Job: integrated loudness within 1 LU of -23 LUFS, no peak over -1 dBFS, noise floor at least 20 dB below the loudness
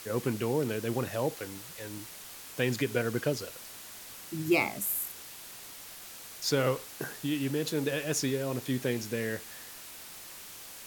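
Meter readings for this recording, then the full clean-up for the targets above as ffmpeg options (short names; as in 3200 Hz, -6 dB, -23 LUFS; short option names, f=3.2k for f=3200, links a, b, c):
noise floor -47 dBFS; noise floor target -52 dBFS; loudness -32.0 LUFS; peak -14.0 dBFS; loudness target -23.0 LUFS
-> -af "afftdn=nr=6:nf=-47"
-af "volume=9dB"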